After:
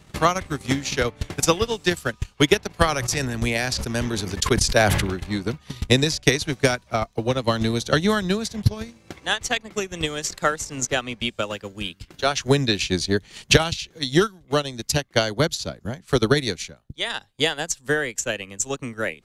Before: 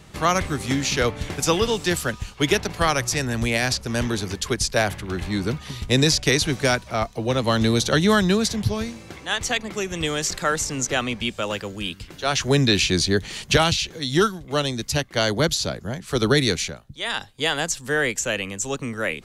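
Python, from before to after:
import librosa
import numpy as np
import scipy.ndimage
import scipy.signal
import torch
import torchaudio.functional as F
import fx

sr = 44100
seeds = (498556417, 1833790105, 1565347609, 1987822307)

y = fx.transient(x, sr, attack_db=10, sustain_db=-9)
y = fx.sustainer(y, sr, db_per_s=33.0, at=(2.85, 5.1))
y = F.gain(torch.from_numpy(y), -4.5).numpy()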